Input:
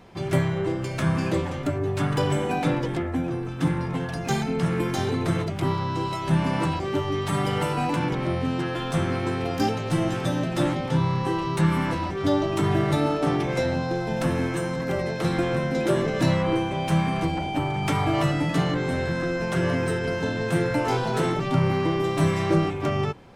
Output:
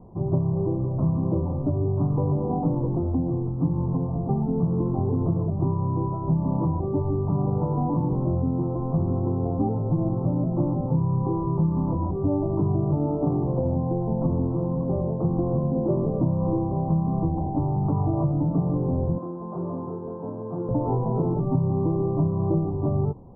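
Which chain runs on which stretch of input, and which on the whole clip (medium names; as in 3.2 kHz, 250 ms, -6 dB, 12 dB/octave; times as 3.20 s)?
19.18–20.69 s: high-pass 810 Hz 6 dB/octave + doubling 28 ms -2.5 dB
whole clip: steep low-pass 1.1 kHz 72 dB/octave; bass shelf 320 Hz +11.5 dB; compression, threshold -15 dBFS; trim -4 dB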